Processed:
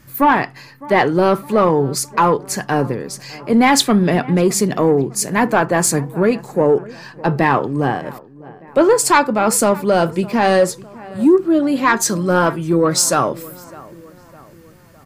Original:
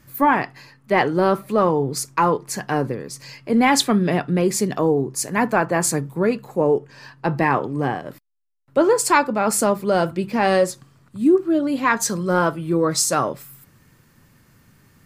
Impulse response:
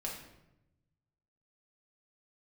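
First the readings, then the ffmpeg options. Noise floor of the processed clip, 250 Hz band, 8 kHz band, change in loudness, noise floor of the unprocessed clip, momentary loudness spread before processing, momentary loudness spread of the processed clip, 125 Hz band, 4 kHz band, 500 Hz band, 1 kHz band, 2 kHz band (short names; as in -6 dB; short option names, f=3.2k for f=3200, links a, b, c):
-44 dBFS, +4.5 dB, +4.5 dB, +4.0 dB, -56 dBFS, 8 LU, 10 LU, +4.5 dB, +4.5 dB, +4.0 dB, +4.0 dB, +3.5 dB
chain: -filter_complex "[0:a]asplit=2[a][b];[b]adelay=607,lowpass=f=2.1k:p=1,volume=-21dB,asplit=2[c][d];[d]adelay=607,lowpass=f=2.1k:p=1,volume=0.52,asplit=2[e][f];[f]adelay=607,lowpass=f=2.1k:p=1,volume=0.52,asplit=2[g][h];[h]adelay=607,lowpass=f=2.1k:p=1,volume=0.52[i];[a][c][e][g][i]amix=inputs=5:normalize=0,acontrast=55,volume=-1dB"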